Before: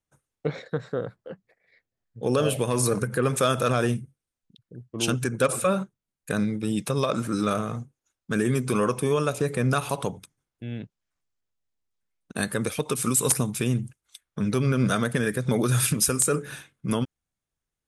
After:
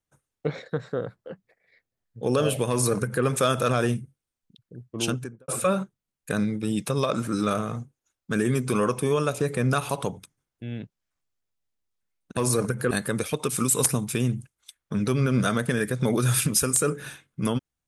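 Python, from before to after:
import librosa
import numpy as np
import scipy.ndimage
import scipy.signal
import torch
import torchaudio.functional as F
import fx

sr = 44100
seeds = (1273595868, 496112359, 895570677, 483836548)

y = fx.studio_fade_out(x, sr, start_s=4.97, length_s=0.51)
y = fx.edit(y, sr, fx.duplicate(start_s=2.7, length_s=0.54, to_s=12.37), tone=tone)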